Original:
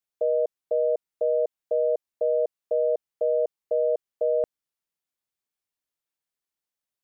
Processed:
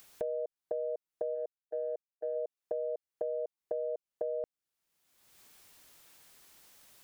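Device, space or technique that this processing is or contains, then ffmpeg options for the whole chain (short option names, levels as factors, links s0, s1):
upward and downward compression: -filter_complex "[0:a]asplit=3[s0][s1][s2];[s0]afade=t=out:st=1.34:d=0.02[s3];[s1]agate=range=0.00562:threshold=0.0794:ratio=16:detection=peak,afade=t=in:st=1.34:d=0.02,afade=t=out:st=2.35:d=0.02[s4];[s2]afade=t=in:st=2.35:d=0.02[s5];[s3][s4][s5]amix=inputs=3:normalize=0,acompressor=mode=upward:threshold=0.0316:ratio=2.5,acompressor=threshold=0.0355:ratio=6,volume=0.668"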